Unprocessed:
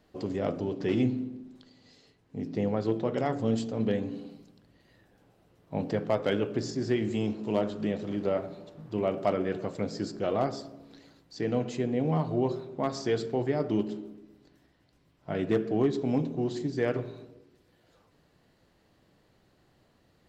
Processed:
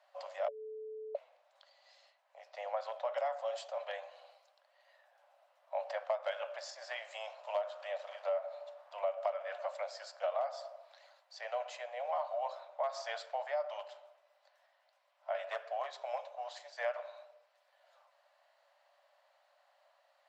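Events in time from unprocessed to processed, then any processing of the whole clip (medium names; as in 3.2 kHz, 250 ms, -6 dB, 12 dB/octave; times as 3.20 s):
0.48–1.15 s: bleep 435 Hz -7.5 dBFS
whole clip: Chebyshev high-pass 560 Hz, order 8; tilt EQ -3 dB/octave; compression, threshold -33 dBFS; trim +1.5 dB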